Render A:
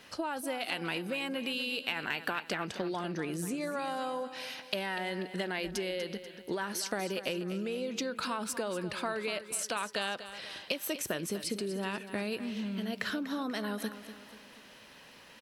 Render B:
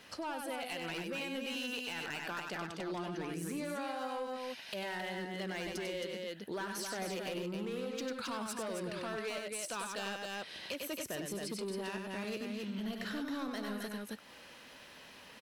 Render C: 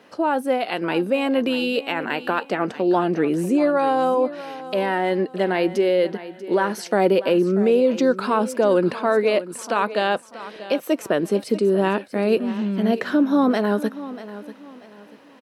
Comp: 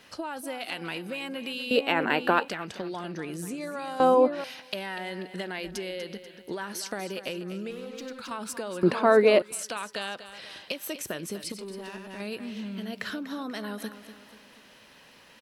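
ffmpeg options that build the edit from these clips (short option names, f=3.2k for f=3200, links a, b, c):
-filter_complex "[2:a]asplit=3[a][b][c];[1:a]asplit=2[d][e];[0:a]asplit=6[f][g][h][i][j][k];[f]atrim=end=1.712[l];[a]atrim=start=1.708:end=2.482[m];[g]atrim=start=2.478:end=4.002[n];[b]atrim=start=3.998:end=4.442[o];[h]atrim=start=4.438:end=7.712[p];[d]atrim=start=7.708:end=8.312[q];[i]atrim=start=8.308:end=8.832[r];[c]atrim=start=8.828:end=9.422[s];[j]atrim=start=9.418:end=11.522[t];[e]atrim=start=11.518:end=12.202[u];[k]atrim=start=12.198[v];[l][m]acrossfade=d=0.004:c1=hsin:c2=hsin[w];[w][n]acrossfade=d=0.004:c1=hsin:c2=hsin[x];[x][o]acrossfade=d=0.004:c1=hsin:c2=hsin[y];[y][p]acrossfade=d=0.004:c1=hsin:c2=hsin[z];[z][q]acrossfade=d=0.004:c1=hsin:c2=hsin[aa];[aa][r]acrossfade=d=0.004:c1=hsin:c2=hsin[ab];[ab][s]acrossfade=d=0.004:c1=hsin:c2=hsin[ac];[ac][t]acrossfade=d=0.004:c1=hsin:c2=hsin[ad];[ad][u]acrossfade=d=0.004:c1=hsin:c2=hsin[ae];[ae][v]acrossfade=d=0.004:c1=hsin:c2=hsin"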